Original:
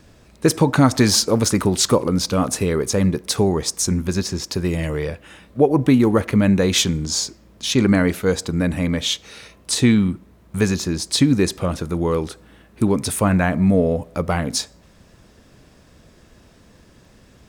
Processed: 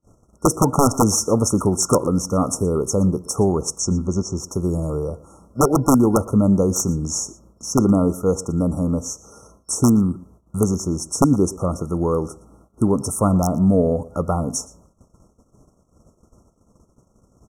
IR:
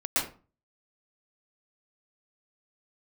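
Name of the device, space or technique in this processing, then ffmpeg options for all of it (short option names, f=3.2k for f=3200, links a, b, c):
overflowing digital effects unit: -filter_complex "[0:a]agate=range=-29dB:threshold=-48dB:ratio=16:detection=peak,aeval=exprs='(mod(2*val(0)+1,2)-1)/2':c=same,lowpass=12k,asettb=1/sr,asplit=3[a][b][c];[a]atrim=end=3.784[d];[b]atrim=start=3.78:end=4.37,asetpts=PTS-STARTPTS,afade=t=in:d=0.004:c=qsin,afade=t=out:st=0.586:d=0.004:c=qsin,lowpass=f=7.3k:w=0.5412,lowpass=f=7.3k:w=1.3066[e];[c]atrim=start=4.366[f];[d][e]acrossfade=d=0.004:c1=hsin:c2=qsin[g];[g][f]acrossfade=d=0.004:c1=qsin:c2=hsin,afftfilt=real='re*(1-between(b*sr/4096,1400,5400))':imag='im*(1-between(b*sr/4096,1400,5400))':win_size=4096:overlap=0.75,asplit=2[h][i];[i]adelay=116.6,volume=-20dB,highshelf=f=4k:g=-2.62[j];[h][j]amix=inputs=2:normalize=0"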